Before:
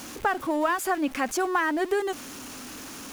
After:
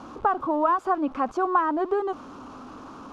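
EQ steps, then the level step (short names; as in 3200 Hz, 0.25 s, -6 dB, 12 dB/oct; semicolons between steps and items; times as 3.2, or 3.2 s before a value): LPF 3500 Hz 12 dB/oct; resonant high shelf 1500 Hz -8 dB, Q 3; 0.0 dB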